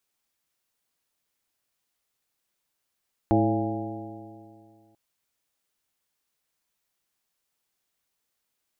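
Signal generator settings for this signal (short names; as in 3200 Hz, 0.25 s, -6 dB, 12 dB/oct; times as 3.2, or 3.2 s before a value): stretched partials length 1.64 s, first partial 107 Hz, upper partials -2/4/-8/-5/-2/-3 dB, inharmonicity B 0.0038, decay 2.31 s, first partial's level -23.5 dB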